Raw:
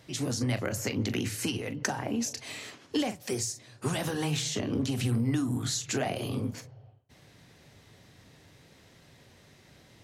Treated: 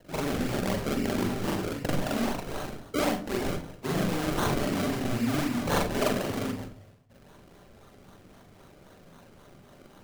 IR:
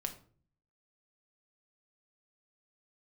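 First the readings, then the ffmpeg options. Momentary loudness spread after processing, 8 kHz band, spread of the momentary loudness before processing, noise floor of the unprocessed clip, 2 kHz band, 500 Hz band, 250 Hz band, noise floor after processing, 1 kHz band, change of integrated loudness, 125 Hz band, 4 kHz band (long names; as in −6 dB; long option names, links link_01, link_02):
7 LU, −5.5 dB, 6 LU, −58 dBFS, +3.0 dB, +5.0 dB, +2.5 dB, −54 dBFS, +7.0 dB, +2.0 dB, −1.0 dB, −1.5 dB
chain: -filter_complex "[0:a]equalizer=frequency=125:width_type=o:width=0.33:gain=-12,equalizer=frequency=630:width_type=o:width=0.33:gain=5,equalizer=frequency=4000:width_type=o:width=0.33:gain=11,acrusher=samples=34:mix=1:aa=0.000001:lfo=1:lforange=34:lforate=3.8,asplit=2[link_01][link_02];[1:a]atrim=start_sample=2205,adelay=42[link_03];[link_02][link_03]afir=irnorm=-1:irlink=0,volume=3dB[link_04];[link_01][link_04]amix=inputs=2:normalize=0,volume=-2.5dB"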